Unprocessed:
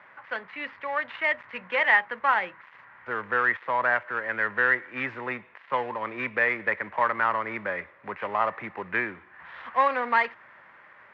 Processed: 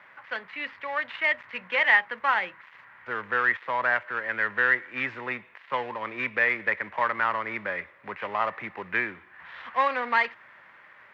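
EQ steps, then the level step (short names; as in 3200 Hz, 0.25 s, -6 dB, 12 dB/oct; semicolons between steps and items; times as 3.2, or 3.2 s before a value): tilt shelf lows -9.5 dB; bell 1300 Hz -9 dB 2.8 oct; high shelf 2500 Hz -12 dB; +8.0 dB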